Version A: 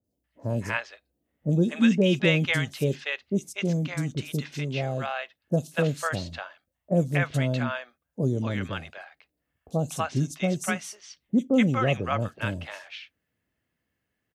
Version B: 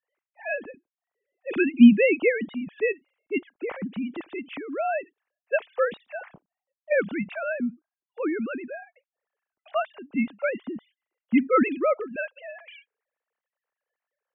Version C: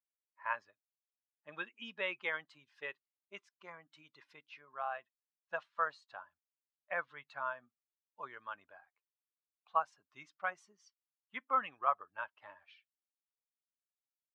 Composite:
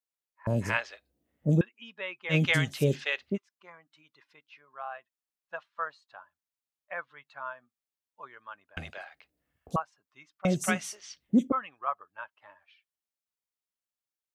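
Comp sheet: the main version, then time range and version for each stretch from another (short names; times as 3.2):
C
0.47–1.61 from A
2.32–3.35 from A, crossfade 0.06 s
8.77–9.76 from A
10.45–11.52 from A
not used: B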